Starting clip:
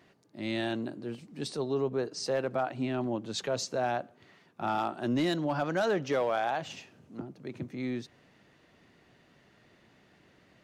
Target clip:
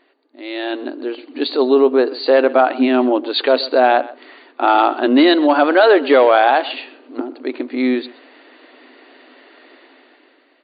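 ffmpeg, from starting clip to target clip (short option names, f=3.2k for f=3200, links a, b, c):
-filter_complex "[0:a]dynaudnorm=f=200:g=9:m=13.5dB,afftfilt=real='re*between(b*sr/4096,240,4700)':imag='im*between(b*sr/4096,240,4700)':win_size=4096:overlap=0.75,asplit=2[a][b];[b]adelay=128.3,volume=-19dB,highshelf=f=4k:g=-2.89[c];[a][c]amix=inputs=2:normalize=0,volume=4.5dB"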